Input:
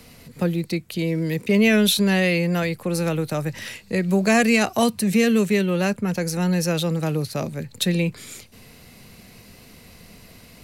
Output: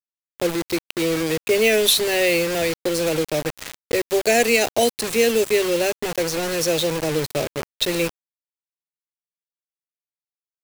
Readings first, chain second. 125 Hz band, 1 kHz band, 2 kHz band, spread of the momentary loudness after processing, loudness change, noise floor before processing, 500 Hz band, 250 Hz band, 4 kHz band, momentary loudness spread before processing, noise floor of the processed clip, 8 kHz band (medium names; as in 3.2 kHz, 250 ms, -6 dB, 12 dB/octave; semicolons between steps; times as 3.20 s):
-9.5 dB, +0.5 dB, +1.0 dB, 9 LU, +1.0 dB, -48 dBFS, +4.5 dB, -6.0 dB, +4.5 dB, 10 LU, under -85 dBFS, +5.0 dB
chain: level-controlled noise filter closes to 1.4 kHz, open at -16.5 dBFS; in parallel at -2 dB: compression 6:1, threshold -32 dBFS, peak gain reduction 17.5 dB; on the sum: short-mantissa float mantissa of 6-bit; static phaser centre 470 Hz, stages 4; bit crusher 5-bit; trim +3.5 dB